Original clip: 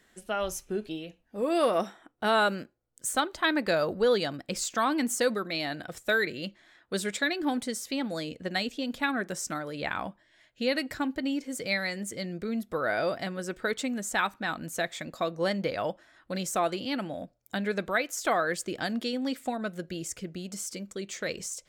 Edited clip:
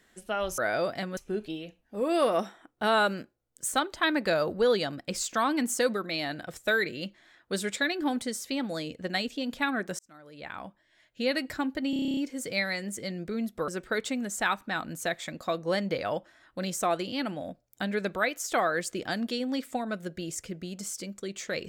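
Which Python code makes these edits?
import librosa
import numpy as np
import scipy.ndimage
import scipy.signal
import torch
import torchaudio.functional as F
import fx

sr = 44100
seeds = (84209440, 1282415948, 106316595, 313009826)

y = fx.edit(x, sr, fx.fade_in_span(start_s=9.4, length_s=1.32),
    fx.stutter(start_s=11.31, slice_s=0.03, count=10),
    fx.move(start_s=12.82, length_s=0.59, to_s=0.58), tone=tone)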